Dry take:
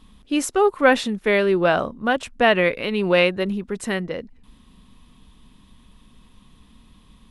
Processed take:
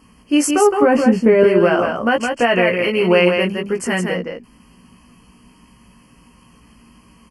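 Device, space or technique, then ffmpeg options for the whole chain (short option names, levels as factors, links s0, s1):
PA system with an anti-feedback notch: -filter_complex "[0:a]highpass=f=150:p=1,asuperstop=centerf=3700:order=20:qfactor=3.4,alimiter=limit=0.211:level=0:latency=1:release=33,asettb=1/sr,asplit=3[s0][s1][s2];[s0]atrim=end=0.824[s3];[s1]atrim=start=0.82:end=1.44,asetpts=PTS-STARTPTS,afade=t=in:d=0.004:c=qsin,afade=t=out:st=0.616:d=0.004:c=qsin,tiltshelf=f=800:g=9[s4];[s2]atrim=start=1.436[s5];[s3][s4]acrossfade=d=0.004:c1=hsin:c2=qsin[s6];[s6][s5]acrossfade=d=0.004:c1=qsin:c2=hsin,asplit=2[s7][s8];[s8]adelay=17,volume=0.631[s9];[s7][s9]amix=inputs=2:normalize=0,aecho=1:1:164:0.562,volume=1.78"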